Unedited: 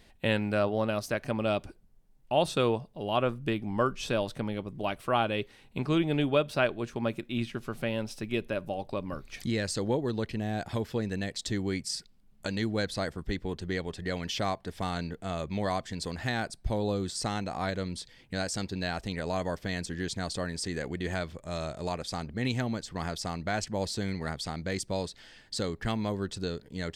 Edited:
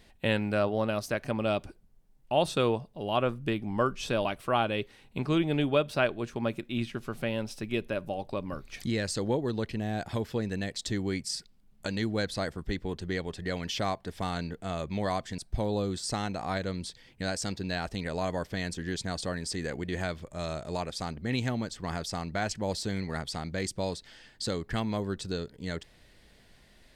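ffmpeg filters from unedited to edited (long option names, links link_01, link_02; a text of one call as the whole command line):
ffmpeg -i in.wav -filter_complex "[0:a]asplit=3[link_01][link_02][link_03];[link_01]atrim=end=4.252[link_04];[link_02]atrim=start=4.848:end=15.982[link_05];[link_03]atrim=start=16.498[link_06];[link_04][link_05]acrossfade=duration=0.004:curve1=hsin:curve2=hsin[link_07];[link_07][link_06]acrossfade=duration=0.004:curve1=hsin:curve2=hsin" out.wav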